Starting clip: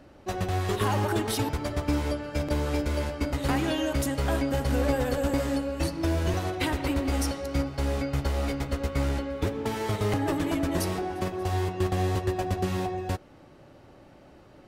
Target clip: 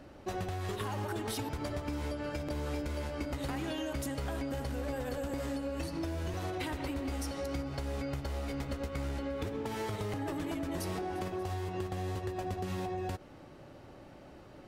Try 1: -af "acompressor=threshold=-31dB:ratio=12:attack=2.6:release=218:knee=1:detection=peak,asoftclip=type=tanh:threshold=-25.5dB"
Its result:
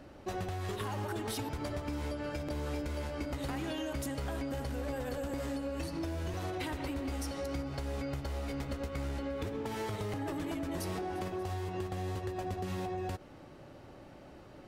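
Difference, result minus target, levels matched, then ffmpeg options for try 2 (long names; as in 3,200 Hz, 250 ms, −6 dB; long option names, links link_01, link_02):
soft clipping: distortion +19 dB
-af "acompressor=threshold=-31dB:ratio=12:attack=2.6:release=218:knee=1:detection=peak,asoftclip=type=tanh:threshold=-15.5dB"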